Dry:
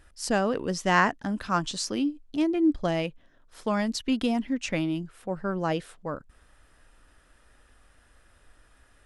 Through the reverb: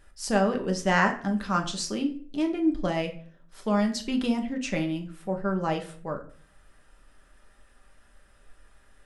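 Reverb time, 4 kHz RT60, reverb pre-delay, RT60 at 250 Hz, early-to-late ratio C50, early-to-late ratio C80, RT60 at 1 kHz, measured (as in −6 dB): 0.50 s, 0.35 s, 5 ms, 0.60 s, 12.0 dB, 16.5 dB, 0.45 s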